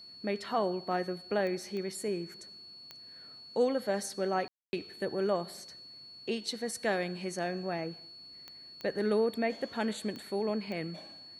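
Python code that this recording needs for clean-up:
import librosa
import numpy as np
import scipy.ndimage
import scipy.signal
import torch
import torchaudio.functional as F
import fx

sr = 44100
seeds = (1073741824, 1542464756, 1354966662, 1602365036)

y = fx.fix_declick_ar(x, sr, threshold=10.0)
y = fx.notch(y, sr, hz=4400.0, q=30.0)
y = fx.fix_ambience(y, sr, seeds[0], print_start_s=5.76, print_end_s=6.26, start_s=4.48, end_s=4.73)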